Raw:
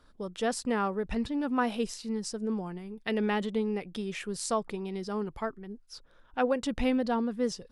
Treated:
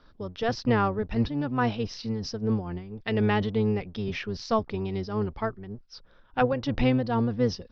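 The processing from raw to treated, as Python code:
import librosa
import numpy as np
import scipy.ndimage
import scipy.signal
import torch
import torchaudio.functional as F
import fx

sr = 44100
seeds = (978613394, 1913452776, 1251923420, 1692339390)

y = fx.octave_divider(x, sr, octaves=1, level_db=-2.0)
y = scipy.signal.sosfilt(scipy.signal.butter(12, 5700.0, 'lowpass', fs=sr, output='sos'), y)
y = fx.am_noise(y, sr, seeds[0], hz=5.7, depth_pct=60)
y = F.gain(torch.from_numpy(y), 5.5).numpy()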